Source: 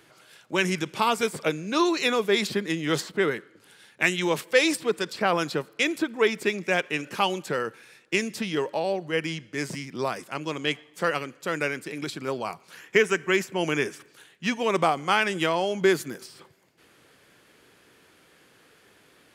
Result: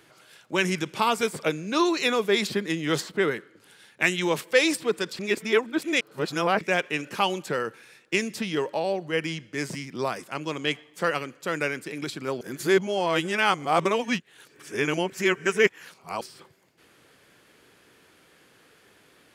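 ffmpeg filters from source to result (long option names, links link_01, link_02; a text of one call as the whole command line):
ffmpeg -i in.wav -filter_complex "[0:a]asplit=5[link_01][link_02][link_03][link_04][link_05];[link_01]atrim=end=5.192[link_06];[link_02]atrim=start=5.188:end=6.612,asetpts=PTS-STARTPTS,areverse[link_07];[link_03]atrim=start=6.608:end=12.412[link_08];[link_04]atrim=start=12.408:end=16.212,asetpts=PTS-STARTPTS,areverse[link_09];[link_05]atrim=start=16.208[link_10];[link_06][link_07]acrossfade=duration=0.004:curve1=hsin:curve2=hsin[link_11];[link_11][link_08]acrossfade=duration=0.004:curve1=hsin:curve2=hsin[link_12];[link_12][link_09]acrossfade=duration=0.004:curve1=hsin:curve2=hsin[link_13];[link_13][link_10]acrossfade=duration=0.004:curve1=hsin:curve2=hsin" out.wav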